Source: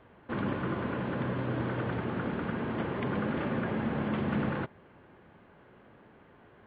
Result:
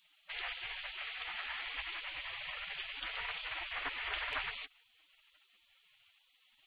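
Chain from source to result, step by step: spectral gate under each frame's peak -25 dB weak; 0.92–1.67 low shelf 420 Hz -9 dB; gain +10.5 dB

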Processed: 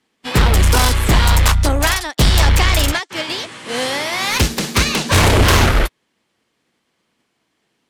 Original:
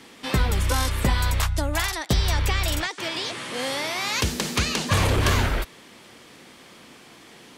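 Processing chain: sine folder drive 7 dB, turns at -11 dBFS; speed mistake 25 fps video run at 24 fps; upward expander 2.5:1, over -37 dBFS; gain +4.5 dB

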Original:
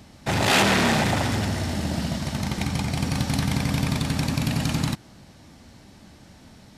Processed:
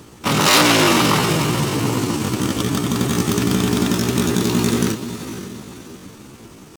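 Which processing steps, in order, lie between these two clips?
diffused feedback echo 0.501 s, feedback 44%, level -11 dB; pitch shift +7 st; gain +6 dB

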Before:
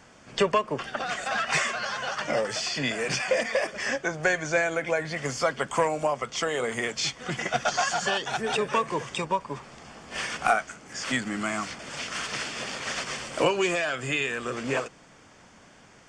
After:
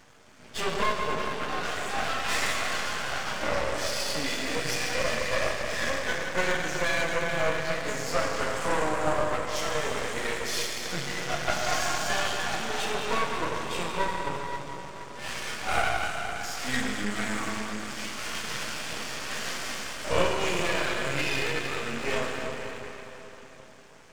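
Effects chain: plain phase-vocoder stretch 1.5×; plate-style reverb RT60 4 s, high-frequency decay 0.85×, DRR -2 dB; half-wave rectifier; gain +2 dB

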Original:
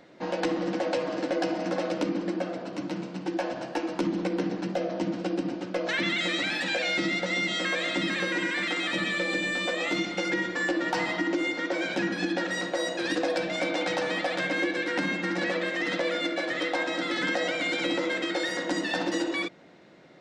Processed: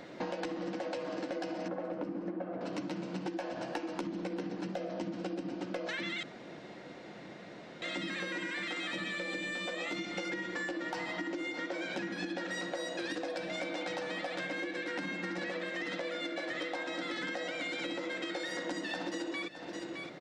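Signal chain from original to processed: 1.68–2.61 LPF 1400 Hz 12 dB/oct; echo 0.614 s -19 dB; compressor 12:1, threshold -40 dBFS, peak gain reduction 17.5 dB; 6.23–7.82 room tone; gain +5.5 dB

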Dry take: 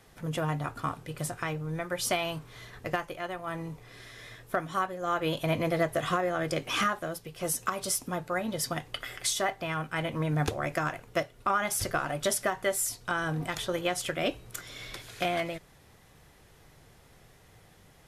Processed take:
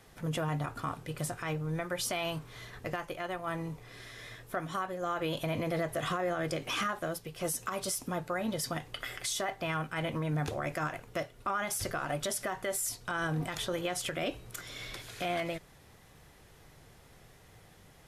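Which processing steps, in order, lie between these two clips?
limiter -24 dBFS, peak gain reduction 8.5 dB

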